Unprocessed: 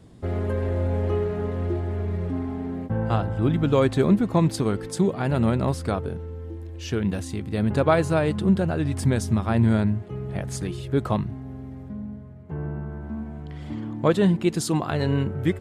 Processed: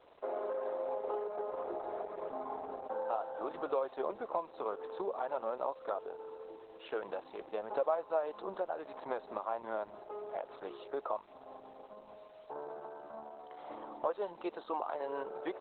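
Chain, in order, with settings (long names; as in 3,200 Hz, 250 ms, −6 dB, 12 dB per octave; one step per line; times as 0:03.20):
high-pass filter 560 Hz 24 dB per octave
flat-topped bell 3,600 Hz −16 dB 2.7 octaves
downward compressor 3 to 1, threshold −40 dBFS, peak gain reduction 17 dB
bit reduction 11 bits
level +5.5 dB
Opus 8 kbit/s 48,000 Hz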